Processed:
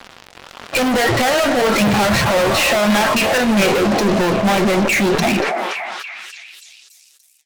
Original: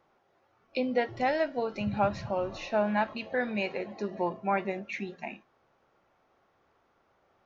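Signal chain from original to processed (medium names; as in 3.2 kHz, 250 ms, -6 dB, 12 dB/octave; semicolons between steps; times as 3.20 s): single-diode clipper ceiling -28.5 dBFS; peaking EQ 1.6 kHz +9 dB 2.8 oct, from 3.38 s -4.5 dB; compression 2:1, threshold -36 dBFS, peak gain reduction 10 dB; fuzz box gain 53 dB, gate -57 dBFS; flange 1.7 Hz, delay 3.4 ms, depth 7.7 ms, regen +70%; repeats whose band climbs or falls 287 ms, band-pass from 600 Hz, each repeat 0.7 oct, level -11.5 dB; decay stretcher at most 20 dB/s; trim +3 dB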